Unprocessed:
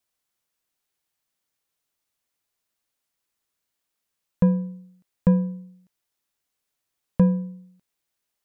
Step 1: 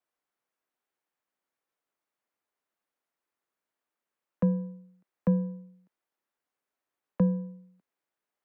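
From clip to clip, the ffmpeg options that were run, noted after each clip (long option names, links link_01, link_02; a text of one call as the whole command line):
ffmpeg -i in.wav -filter_complex "[0:a]acrossover=split=210 2100:gain=0.178 1 0.2[link_01][link_02][link_03];[link_01][link_02][link_03]amix=inputs=3:normalize=0,acrossover=split=190|440[link_04][link_05][link_06];[link_06]acompressor=threshold=-40dB:ratio=6[link_07];[link_04][link_05][link_07]amix=inputs=3:normalize=0" out.wav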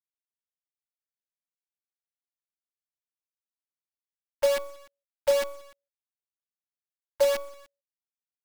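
ffmpeg -i in.wav -filter_complex "[0:a]equalizer=frequency=160:width_type=o:width=0.9:gain=13.5,afreqshift=380,acrossover=split=250[link_01][link_02];[link_02]acrusher=bits=4:dc=4:mix=0:aa=0.000001[link_03];[link_01][link_03]amix=inputs=2:normalize=0,volume=-9dB" out.wav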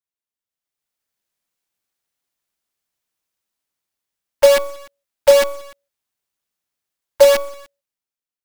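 ffmpeg -i in.wav -af "dynaudnorm=framelen=120:gausssize=13:maxgain=14dB,volume=1dB" out.wav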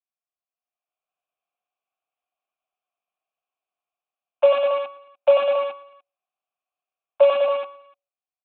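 ffmpeg -i in.wav -filter_complex "[0:a]asplit=3[link_01][link_02][link_03];[link_01]bandpass=frequency=730:width_type=q:width=8,volume=0dB[link_04];[link_02]bandpass=frequency=1090:width_type=q:width=8,volume=-6dB[link_05];[link_03]bandpass=frequency=2440:width_type=q:width=8,volume=-9dB[link_06];[link_04][link_05][link_06]amix=inputs=3:normalize=0,aecho=1:1:93.29|201.2|277:0.708|0.447|0.398,aresample=8000,aresample=44100,volume=6dB" out.wav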